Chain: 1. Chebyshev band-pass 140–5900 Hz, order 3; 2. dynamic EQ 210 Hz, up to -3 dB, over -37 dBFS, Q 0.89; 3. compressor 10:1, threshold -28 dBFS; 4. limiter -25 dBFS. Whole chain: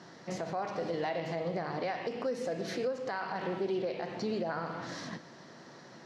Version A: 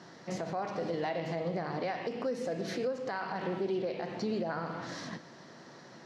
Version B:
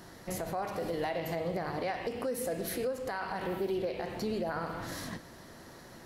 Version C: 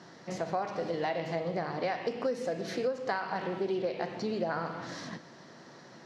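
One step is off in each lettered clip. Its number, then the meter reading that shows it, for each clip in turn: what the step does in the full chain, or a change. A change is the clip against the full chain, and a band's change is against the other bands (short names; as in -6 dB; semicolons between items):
2, 125 Hz band +2.0 dB; 1, 8 kHz band +7.5 dB; 4, crest factor change +6.0 dB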